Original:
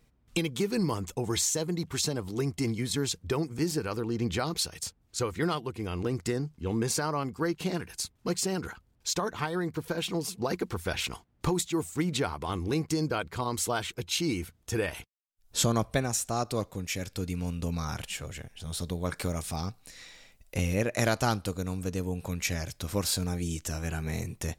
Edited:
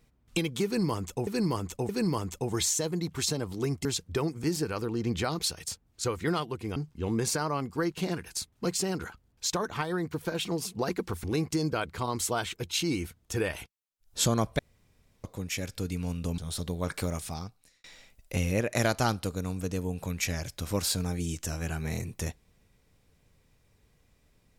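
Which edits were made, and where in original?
0:00.65–0:01.27: repeat, 3 plays
0:02.61–0:03.00: remove
0:05.91–0:06.39: remove
0:10.87–0:12.62: remove
0:15.97–0:16.62: fill with room tone
0:17.76–0:18.60: remove
0:19.33–0:20.06: fade out

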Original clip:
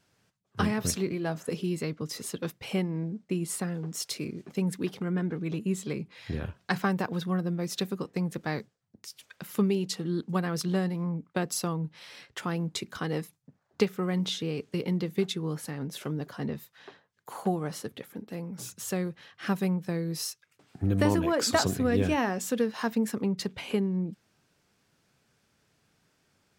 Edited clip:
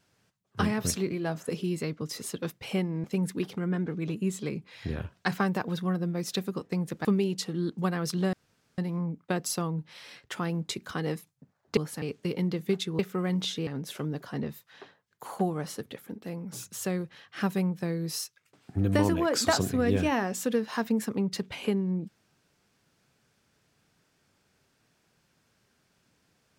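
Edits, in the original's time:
0:03.04–0:04.48: remove
0:08.49–0:09.56: remove
0:10.84: splice in room tone 0.45 s
0:13.83–0:14.51: swap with 0:15.48–0:15.73

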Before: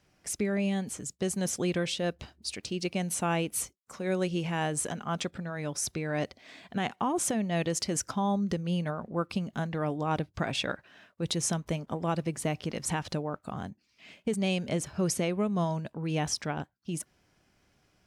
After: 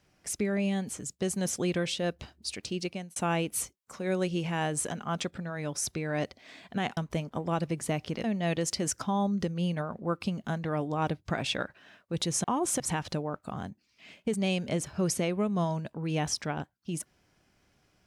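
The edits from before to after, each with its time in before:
0:02.78–0:03.16: fade out
0:06.97–0:07.33: swap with 0:11.53–0:12.80

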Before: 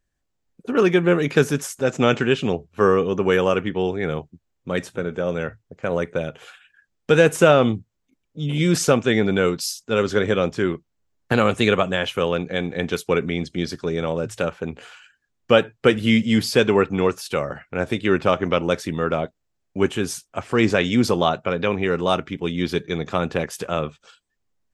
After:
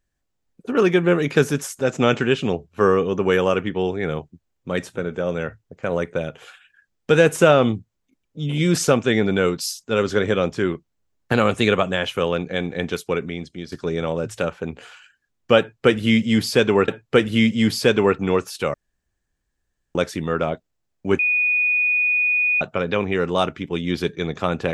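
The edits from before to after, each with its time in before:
0:12.73–0:13.72: fade out, to −10.5 dB
0:15.59–0:16.88: repeat, 2 plays
0:17.45–0:18.66: fill with room tone
0:19.90–0:21.32: beep over 2,470 Hz −16 dBFS

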